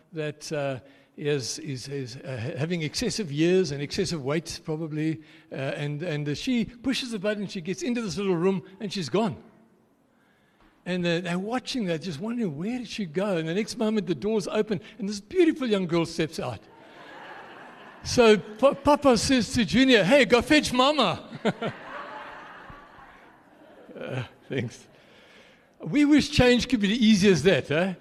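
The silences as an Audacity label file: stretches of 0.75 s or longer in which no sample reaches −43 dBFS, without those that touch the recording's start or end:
9.470000	10.860000	silence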